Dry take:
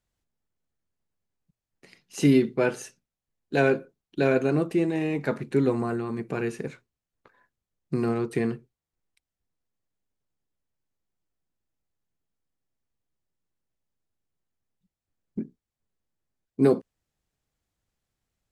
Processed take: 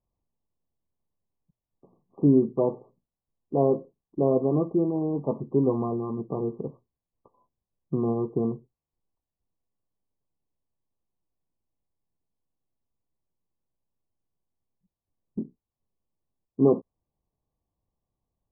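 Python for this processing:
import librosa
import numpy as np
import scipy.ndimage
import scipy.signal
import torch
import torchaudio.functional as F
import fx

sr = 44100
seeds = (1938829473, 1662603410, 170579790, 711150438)

y = fx.brickwall_lowpass(x, sr, high_hz=1200.0)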